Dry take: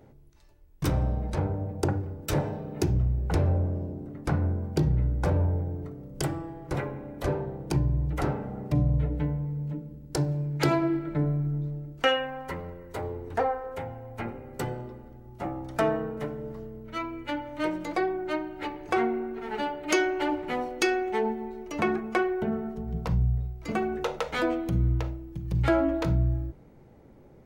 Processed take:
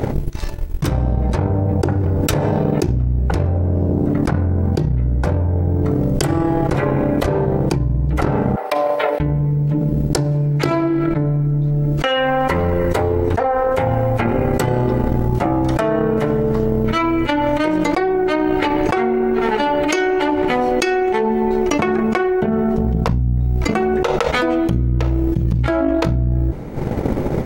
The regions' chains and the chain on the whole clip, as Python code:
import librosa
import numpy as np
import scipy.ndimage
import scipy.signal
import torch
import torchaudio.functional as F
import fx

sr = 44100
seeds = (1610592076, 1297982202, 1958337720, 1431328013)

y = fx.chain(x, sr, fx.highpass(hz=610.0, slope=24),
    fx.peak_eq(hz=6900.0, db=-9.5, octaves=0.38), at=(8.56, 9.2))
y = fx.transient(y, sr, attack_db=12, sustain_db=-9)
y = fx.high_shelf(y, sr, hz=10000.0, db=-3.5)
y = fx.env_flatten(y, sr, amount_pct=100)
y = F.gain(torch.from_numpy(y), -7.5).numpy()